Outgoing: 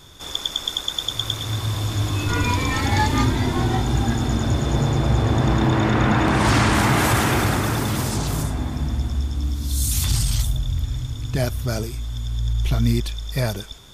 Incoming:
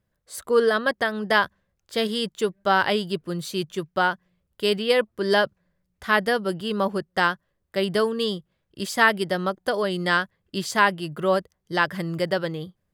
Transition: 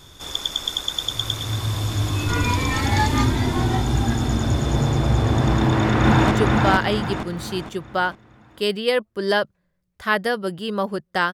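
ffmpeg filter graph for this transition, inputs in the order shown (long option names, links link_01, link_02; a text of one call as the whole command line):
ffmpeg -i cue0.wav -i cue1.wav -filter_complex "[0:a]apad=whole_dur=11.33,atrim=end=11.33,atrim=end=6.312[link_01];[1:a]atrim=start=2.328:end=7.35[link_02];[link_01][link_02]acrossfade=duration=0.004:curve1=hsin:curve2=hsin,asplit=2[link_03][link_04];[link_04]afade=type=in:start_time=5.58:duration=0.01,afade=type=out:start_time=6.31:duration=0.01,aecho=0:1:460|920|1380|1840|2300:0.891251|0.3565|0.1426|0.0570401|0.022816[link_05];[link_03][link_05]amix=inputs=2:normalize=0" out.wav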